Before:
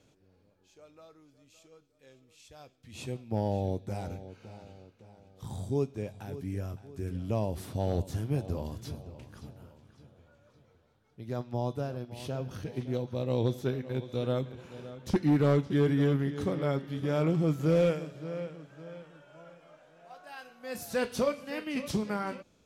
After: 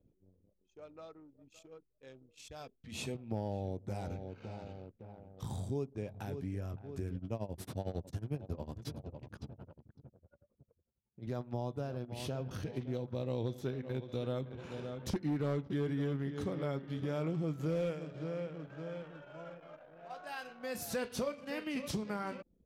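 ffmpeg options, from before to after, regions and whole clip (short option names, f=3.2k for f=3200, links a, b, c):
-filter_complex "[0:a]asettb=1/sr,asplit=3[a][b][c];[a]atrim=end=2.594[d];[b]atrim=start=2.59:end=3.15,asetpts=PTS-STARTPTS,afade=t=in:d=0.004:c=qsin,afade=t=out:st=0.556:d=0.004:c=qsin,bandreject=f=60:t=h:w=6,bandreject=f=120:t=h:w=6,bandreject=f=180:t=h:w=6,bandreject=f=240:t=h:w=6,bandreject=f=300:t=h:w=6,bandreject=f=360:t=h:w=6,bandreject=f=420:t=h:w=6,aecho=1:1:4.6:0.34,atrim=end_sample=24696[e];[c]atrim=start=3.146[f];[d][e]acrossfade=d=0.004:c1=hsin:c2=qsin[g];[g][f]acrossfade=d=0.004:c1=qsin:c2=hsin,asettb=1/sr,asplit=3[h][i][j];[h]atrim=end=7.164[k];[i]atrim=start=7.16:end=11.27,asetpts=PTS-STARTPTS,afade=t=in:d=0.004:c=qsin,afade=t=out:st=4.106:d=0.004:c=qsin,highpass=62,tremolo=f=11:d=0.84[l];[j]atrim=start=11.266[m];[k][l]acrossfade=d=0.004:c1=hsin:c2=qsin[n];[n][m]acrossfade=d=0.004:c1=qsin:c2=hsin,acompressor=threshold=-42dB:ratio=2.5,anlmdn=0.0001,volume=3.5dB"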